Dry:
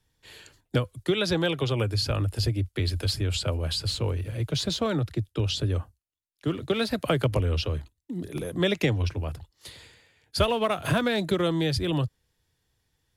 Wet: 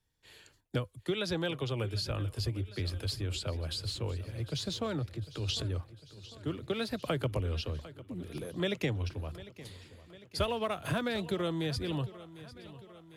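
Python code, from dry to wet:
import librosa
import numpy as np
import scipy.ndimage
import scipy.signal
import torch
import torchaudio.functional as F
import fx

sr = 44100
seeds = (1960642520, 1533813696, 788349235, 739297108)

p1 = fx.transient(x, sr, attack_db=-5, sustain_db=10, at=(5.11, 5.65))
p2 = p1 + fx.echo_feedback(p1, sr, ms=751, feedback_pct=59, wet_db=-17.0, dry=0)
y = p2 * librosa.db_to_amplitude(-8.0)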